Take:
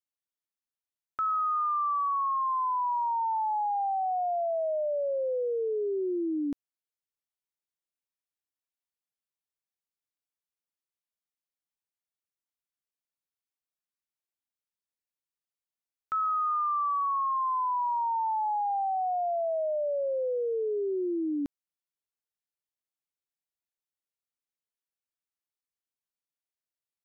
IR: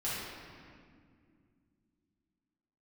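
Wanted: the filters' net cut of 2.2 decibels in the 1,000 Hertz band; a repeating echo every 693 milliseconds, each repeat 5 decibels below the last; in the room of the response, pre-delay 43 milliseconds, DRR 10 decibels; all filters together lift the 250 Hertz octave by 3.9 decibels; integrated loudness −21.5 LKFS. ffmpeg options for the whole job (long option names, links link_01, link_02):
-filter_complex "[0:a]equalizer=frequency=250:width_type=o:gain=6,equalizer=frequency=1000:width_type=o:gain=-3,aecho=1:1:693|1386|2079|2772|3465|4158|4851:0.562|0.315|0.176|0.0988|0.0553|0.031|0.0173,asplit=2[link_01][link_02];[1:a]atrim=start_sample=2205,adelay=43[link_03];[link_02][link_03]afir=irnorm=-1:irlink=0,volume=-15.5dB[link_04];[link_01][link_04]amix=inputs=2:normalize=0,volume=7.5dB"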